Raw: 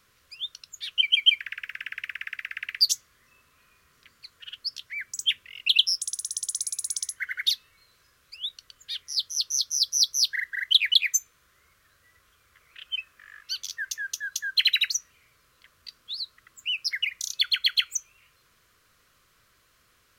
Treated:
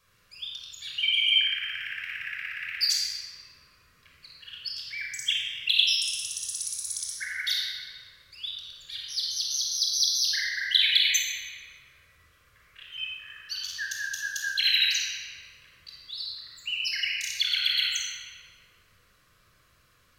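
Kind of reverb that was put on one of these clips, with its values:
rectangular room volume 3,600 cubic metres, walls mixed, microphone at 5.6 metres
level −7 dB

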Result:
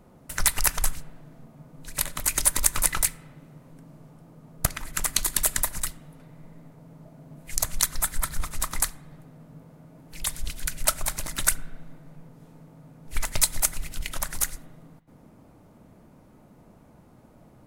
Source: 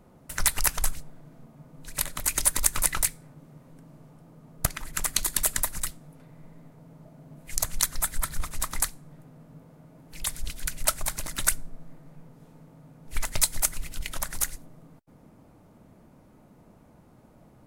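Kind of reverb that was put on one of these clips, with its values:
spring reverb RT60 1.3 s, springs 33/37 ms, chirp 65 ms, DRR 17.5 dB
level +1.5 dB

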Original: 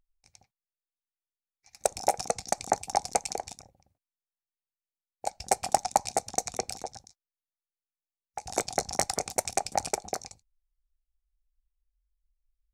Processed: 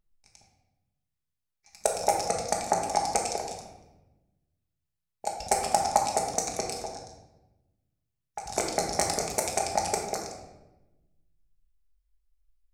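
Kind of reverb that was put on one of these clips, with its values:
rectangular room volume 490 cubic metres, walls mixed, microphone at 1.4 metres
level −1 dB

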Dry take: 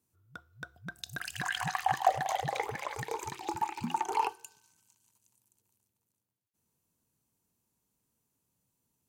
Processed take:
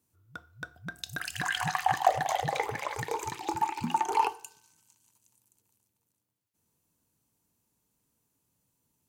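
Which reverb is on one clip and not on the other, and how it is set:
feedback delay network reverb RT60 0.46 s, low-frequency decay 0.8×, high-frequency decay 0.7×, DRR 12.5 dB
level +3 dB

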